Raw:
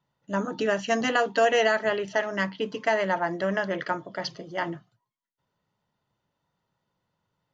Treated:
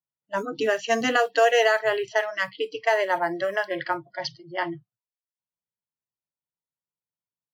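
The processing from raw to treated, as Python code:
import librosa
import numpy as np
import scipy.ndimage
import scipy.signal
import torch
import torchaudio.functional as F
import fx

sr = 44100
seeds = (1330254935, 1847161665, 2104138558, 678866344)

y = fx.mod_noise(x, sr, seeds[0], snr_db=34)
y = fx.env_lowpass(y, sr, base_hz=2500.0, full_db=-23.0)
y = fx.noise_reduce_blind(y, sr, reduce_db=29)
y = F.gain(torch.from_numpy(y), 2.5).numpy()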